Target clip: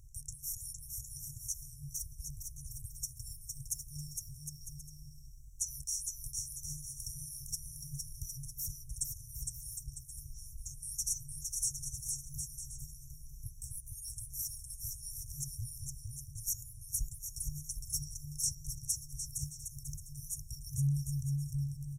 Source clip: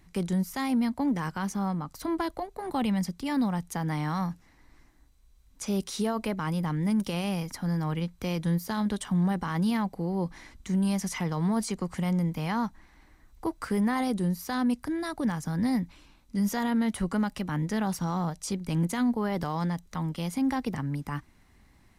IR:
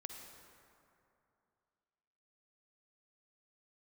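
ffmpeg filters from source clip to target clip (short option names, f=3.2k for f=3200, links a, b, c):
-af "afftfilt=real='re*(1-between(b*sr/4096,150,5400))':imag='im*(1-between(b*sr/4096,150,5400))':win_size=4096:overlap=0.75,aecho=1:1:460|759|953.4|1080|1162:0.631|0.398|0.251|0.158|0.1,volume=4.5dB"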